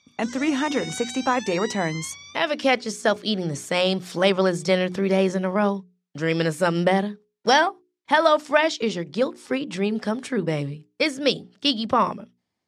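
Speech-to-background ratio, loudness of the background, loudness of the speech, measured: 13.0 dB, −36.0 LKFS, −23.0 LKFS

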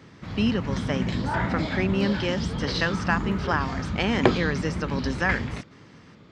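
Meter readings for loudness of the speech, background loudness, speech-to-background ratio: −28.0 LKFS, −29.0 LKFS, 1.0 dB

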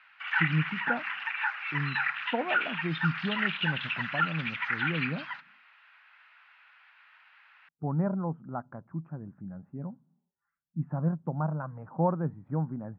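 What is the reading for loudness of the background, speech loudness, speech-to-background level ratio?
−30.5 LKFS, −34.5 LKFS, −4.0 dB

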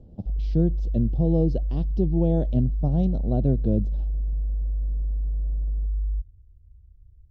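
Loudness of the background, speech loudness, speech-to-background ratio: −29.0 LKFS, −25.5 LKFS, 3.5 dB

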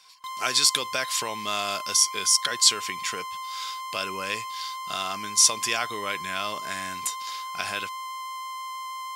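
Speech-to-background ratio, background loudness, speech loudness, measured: 10.5 dB, −35.0 LKFS, −24.5 LKFS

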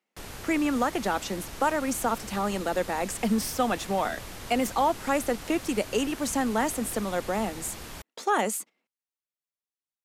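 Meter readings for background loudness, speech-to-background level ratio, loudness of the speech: −41.0 LKFS, 12.5 dB, −28.5 LKFS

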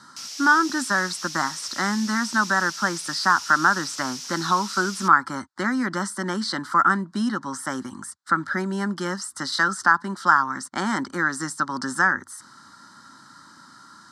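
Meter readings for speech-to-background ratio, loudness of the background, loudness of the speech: 10.0 dB, −33.0 LKFS, −23.0 LKFS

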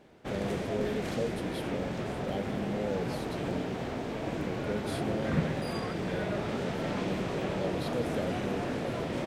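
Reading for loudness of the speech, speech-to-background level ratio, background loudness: −38.5 LKFS, −4.0 dB, −34.5 LKFS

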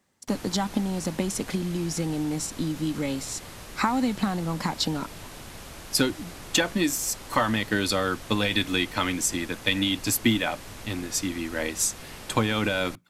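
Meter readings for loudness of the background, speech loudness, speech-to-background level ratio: −42.0 LKFS, −27.0 LKFS, 15.0 dB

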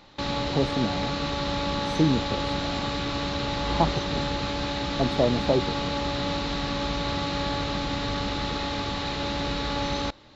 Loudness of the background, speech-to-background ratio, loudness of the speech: −28.5 LKFS, 0.5 dB, −28.0 LKFS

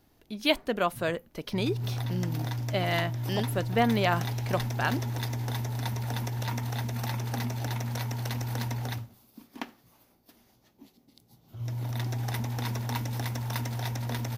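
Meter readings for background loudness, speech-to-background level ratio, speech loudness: −33.0 LKFS, 2.5 dB, −30.5 LKFS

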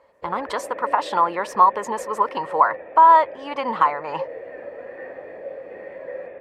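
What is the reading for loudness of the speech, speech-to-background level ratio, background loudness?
−20.0 LKFS, 16.0 dB, −36.0 LKFS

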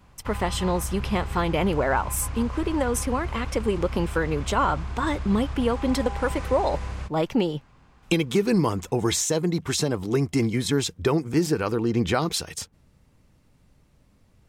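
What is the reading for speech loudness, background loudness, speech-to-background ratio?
−25.5 LKFS, −34.0 LKFS, 8.5 dB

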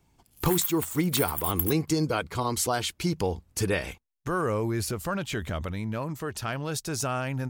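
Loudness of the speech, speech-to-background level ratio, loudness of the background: −29.0 LKFS, 2.0 dB, −31.0 LKFS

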